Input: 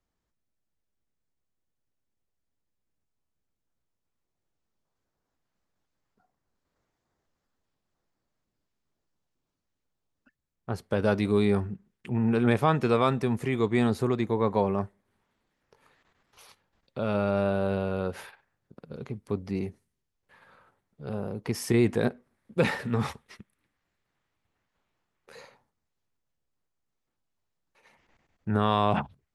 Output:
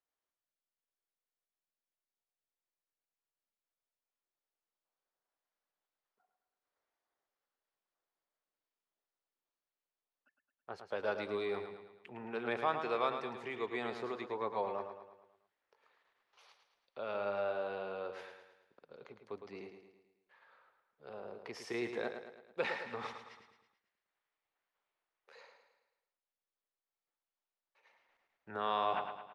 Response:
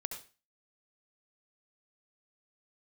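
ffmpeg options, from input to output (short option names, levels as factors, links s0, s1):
-filter_complex "[0:a]acrossover=split=400 5700:gain=0.0794 1 0.0708[s0][s1][s2];[s0][s1][s2]amix=inputs=3:normalize=0,aecho=1:1:109|218|327|436|545|654:0.398|0.199|0.0995|0.0498|0.0249|0.0124,volume=0.398"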